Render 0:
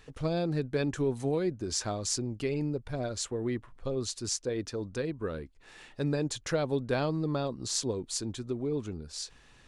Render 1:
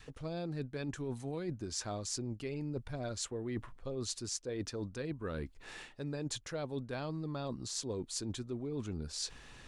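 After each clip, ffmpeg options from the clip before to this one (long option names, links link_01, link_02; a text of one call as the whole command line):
ffmpeg -i in.wav -af "adynamicequalizer=threshold=0.00562:dfrequency=450:dqfactor=1.5:tfrequency=450:tqfactor=1.5:attack=5:release=100:ratio=0.375:range=2.5:mode=cutabove:tftype=bell,areverse,acompressor=threshold=-40dB:ratio=12,areverse,volume=4.5dB" out.wav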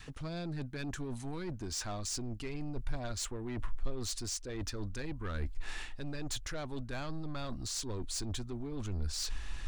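ffmpeg -i in.wav -af "equalizer=frequency=490:width=2.1:gain=-8,asoftclip=type=tanh:threshold=-38.5dB,asubboost=boost=8:cutoff=53,volume=5.5dB" out.wav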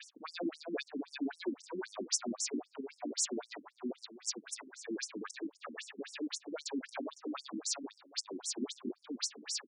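ffmpeg -i in.wav -filter_complex "[0:a]alimiter=level_in=10dB:limit=-24dB:level=0:latency=1:release=178,volume=-10dB,asplit=2[link_01][link_02];[link_02]aecho=0:1:350|700|1050:0.668|0.127|0.0241[link_03];[link_01][link_03]amix=inputs=2:normalize=0,afftfilt=real='re*between(b*sr/1024,250*pow(7700/250,0.5+0.5*sin(2*PI*3.8*pts/sr))/1.41,250*pow(7700/250,0.5+0.5*sin(2*PI*3.8*pts/sr))*1.41)':imag='im*between(b*sr/1024,250*pow(7700/250,0.5+0.5*sin(2*PI*3.8*pts/sr))/1.41,250*pow(7700/250,0.5+0.5*sin(2*PI*3.8*pts/sr))*1.41)':win_size=1024:overlap=0.75,volume=10dB" out.wav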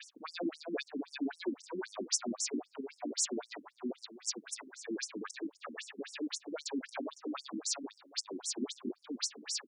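ffmpeg -i in.wav -af "acontrast=21,volume=-4dB" out.wav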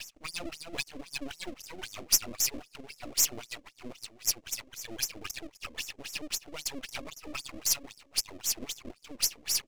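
ffmpeg -i in.wav -af "highpass=240,equalizer=frequency=400:width_type=q:width=4:gain=-6,equalizer=frequency=1300:width_type=q:width=4:gain=5,equalizer=frequency=2700:width_type=q:width=4:gain=6,equalizer=frequency=3900:width_type=q:width=4:gain=-7,lowpass=frequency=7000:width=0.5412,lowpass=frequency=7000:width=1.3066,aeval=exprs='max(val(0),0)':channel_layout=same,aexciter=amount=3.4:drive=5.5:freq=2100,volume=2dB" out.wav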